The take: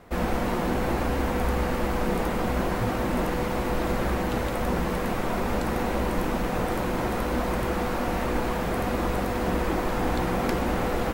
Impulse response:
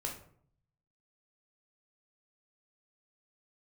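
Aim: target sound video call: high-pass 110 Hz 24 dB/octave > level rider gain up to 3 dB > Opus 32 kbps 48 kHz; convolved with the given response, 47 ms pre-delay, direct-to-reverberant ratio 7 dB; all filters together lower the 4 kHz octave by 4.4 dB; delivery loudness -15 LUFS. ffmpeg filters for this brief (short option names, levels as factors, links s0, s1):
-filter_complex "[0:a]equalizer=f=4000:t=o:g=-6,asplit=2[s0][s1];[1:a]atrim=start_sample=2205,adelay=47[s2];[s1][s2]afir=irnorm=-1:irlink=0,volume=0.398[s3];[s0][s3]amix=inputs=2:normalize=0,highpass=f=110:w=0.5412,highpass=f=110:w=1.3066,dynaudnorm=m=1.41,volume=3.98" -ar 48000 -c:a libopus -b:a 32k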